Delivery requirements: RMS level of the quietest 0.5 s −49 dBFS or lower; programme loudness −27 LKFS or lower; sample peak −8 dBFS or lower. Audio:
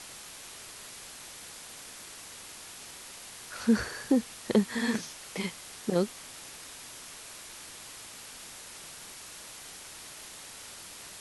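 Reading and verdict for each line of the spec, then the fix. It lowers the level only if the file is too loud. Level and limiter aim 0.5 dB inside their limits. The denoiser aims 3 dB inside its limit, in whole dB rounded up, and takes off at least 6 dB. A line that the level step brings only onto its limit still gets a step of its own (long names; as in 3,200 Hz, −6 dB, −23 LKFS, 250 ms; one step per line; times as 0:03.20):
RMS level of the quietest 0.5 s −46 dBFS: out of spec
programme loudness −35.5 LKFS: in spec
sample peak −11.5 dBFS: in spec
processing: broadband denoise 6 dB, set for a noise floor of −46 dBFS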